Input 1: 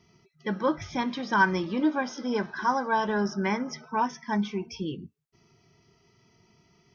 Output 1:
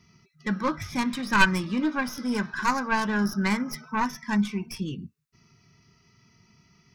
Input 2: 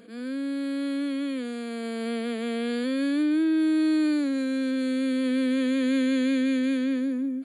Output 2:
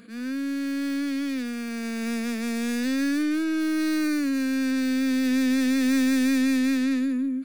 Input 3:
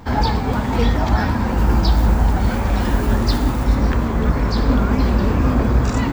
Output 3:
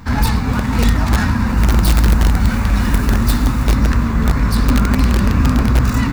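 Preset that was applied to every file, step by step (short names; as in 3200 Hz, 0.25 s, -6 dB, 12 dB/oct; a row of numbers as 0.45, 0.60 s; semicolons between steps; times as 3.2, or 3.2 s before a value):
tracing distortion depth 0.18 ms; band shelf 530 Hz -9 dB; notch 3200 Hz, Q 10; in parallel at -5 dB: wrapped overs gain 8.5 dB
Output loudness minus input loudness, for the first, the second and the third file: +1.5, +1.0, +3.0 LU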